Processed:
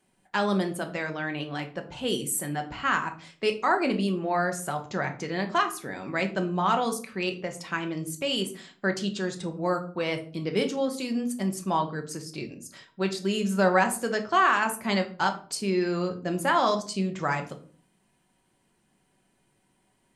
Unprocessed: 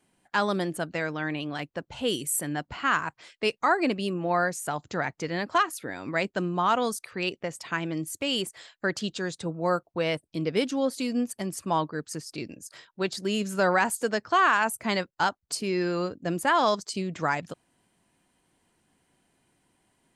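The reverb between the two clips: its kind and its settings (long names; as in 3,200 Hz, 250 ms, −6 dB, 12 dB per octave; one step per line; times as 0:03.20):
rectangular room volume 350 cubic metres, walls furnished, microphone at 1.1 metres
level −1.5 dB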